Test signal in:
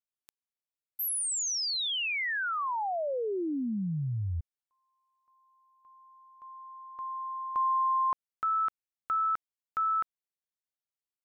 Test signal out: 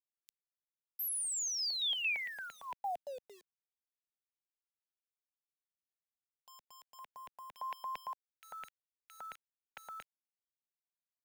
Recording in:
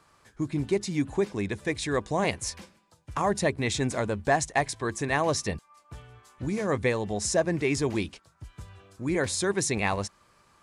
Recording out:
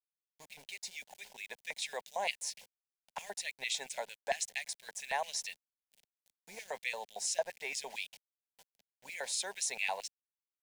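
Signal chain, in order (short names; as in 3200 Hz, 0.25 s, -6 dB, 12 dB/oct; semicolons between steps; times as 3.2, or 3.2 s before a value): LFO high-pass square 4.4 Hz 900–2600 Hz; sample gate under -44 dBFS; fixed phaser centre 320 Hz, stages 6; gain -5.5 dB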